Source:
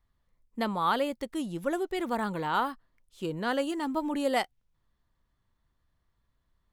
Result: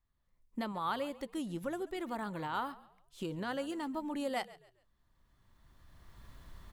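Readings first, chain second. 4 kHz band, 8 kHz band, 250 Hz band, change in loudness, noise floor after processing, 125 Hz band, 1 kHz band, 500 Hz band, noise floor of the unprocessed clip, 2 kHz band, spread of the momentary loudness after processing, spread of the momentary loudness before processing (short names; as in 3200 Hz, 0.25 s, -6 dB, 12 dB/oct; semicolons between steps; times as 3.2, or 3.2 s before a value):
-8.0 dB, -7.0 dB, -6.5 dB, -8.0 dB, -76 dBFS, -5.0 dB, -8.0 dB, -8.5 dB, -77 dBFS, -8.0 dB, 14 LU, 9 LU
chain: recorder AGC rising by 16 dB/s; notch 470 Hz, Q 15; on a send: frequency-shifting echo 0.138 s, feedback 33%, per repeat -48 Hz, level -19 dB; on the sum: gain -8.5 dB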